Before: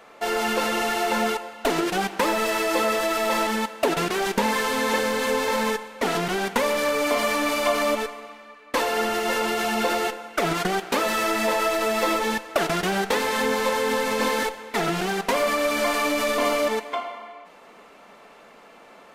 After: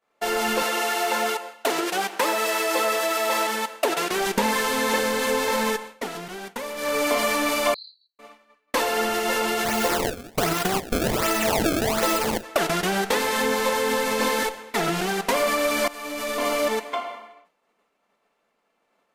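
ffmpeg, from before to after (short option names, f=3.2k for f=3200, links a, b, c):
-filter_complex "[0:a]asettb=1/sr,asplit=3[a][b][c];[a]atrim=end=0.624[d];[b]atrim=start=0.62:end=4.11,asetpts=PTS-STARTPTS,afade=t=in:d=0.004:c=qsin,afade=t=out:st=3.486:d=0.004:c=qsin,highpass=360[e];[c]atrim=start=4.106[f];[d][e]acrossfade=d=0.004:c1=hsin:c2=qsin[g];[g][f]acrossfade=d=0.004:c1=qsin:c2=hsin,asettb=1/sr,asplit=3[h][i][j];[h]atrim=end=7.744[k];[i]atrim=start=7.74:end=8.19,asetpts=PTS-STARTPTS,afade=t=in:d=0.004:c=qsin,afade=t=out:st=0.446:d=0.004:c=qsin,asuperpass=centerf=4200:order=12:qfactor=5.9[l];[j]atrim=start=8.186[m];[k][l]acrossfade=d=0.004:c1=hsin:c2=qsin[n];[n][m]acrossfade=d=0.004:c1=qsin:c2=hsin,asplit=3[o][p][q];[o]afade=t=out:st=9.64:d=0.02[r];[p]acrusher=samples=26:mix=1:aa=0.000001:lfo=1:lforange=41.6:lforate=1.3,afade=t=in:st=9.64:d=0.02,afade=t=out:st=12.42:d=0.02[s];[q]afade=t=in:st=12.42:d=0.02[t];[r][s][t]amix=inputs=3:normalize=0,asplit=4[u][v][w][x];[u]atrim=end=6.09,asetpts=PTS-STARTPTS,afade=t=out:st=5.89:d=0.2:silence=0.316228[y];[v]atrim=start=6.09:end=6.76,asetpts=PTS-STARTPTS,volume=-10dB[z];[w]atrim=start=6.76:end=15.88,asetpts=PTS-STARTPTS,afade=t=in:d=0.2:silence=0.316228,afade=t=out:st=9.116:d=0.004:c=hsin:silence=0.112202[aa];[x]atrim=start=15.88,asetpts=PTS-STARTPTS,afade=t=in:d=0.8:silence=0.112202[ab];[y][z][aa][ab]concat=n=4:v=0:a=1,agate=range=-33dB:threshold=-34dB:ratio=3:detection=peak,highshelf=f=6.1k:g=5"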